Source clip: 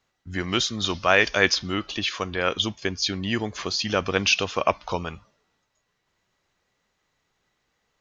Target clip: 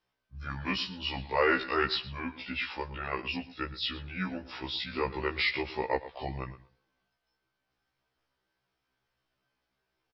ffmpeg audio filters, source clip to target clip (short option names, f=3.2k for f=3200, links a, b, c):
-filter_complex "[0:a]asetrate=34839,aresample=44100,asplit=2[a][b];[b]adelay=116,lowpass=f=4k:p=1,volume=-15dB,asplit=2[c][d];[d]adelay=116,lowpass=f=4k:p=1,volume=0.16[e];[a][c][e]amix=inputs=3:normalize=0,afftfilt=real='re*1.73*eq(mod(b,3),0)':imag='im*1.73*eq(mod(b,3),0)':win_size=2048:overlap=0.75,volume=-6dB"